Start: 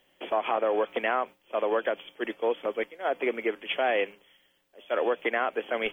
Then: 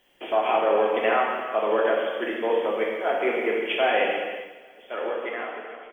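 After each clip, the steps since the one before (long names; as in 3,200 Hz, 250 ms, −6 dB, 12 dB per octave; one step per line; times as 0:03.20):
fade-out on the ending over 1.70 s
repeating echo 274 ms, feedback 48%, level −20 dB
reverb whose tail is shaped and stops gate 500 ms falling, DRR −3.5 dB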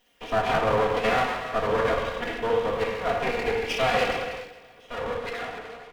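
lower of the sound and its delayed copy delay 4.2 ms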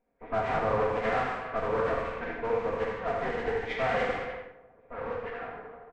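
hearing-aid frequency compression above 1,300 Hz 1.5 to 1
low-pass that shuts in the quiet parts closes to 770 Hz, open at −21.5 dBFS
on a send: single-tap delay 78 ms −7.5 dB
on the sum: level −5 dB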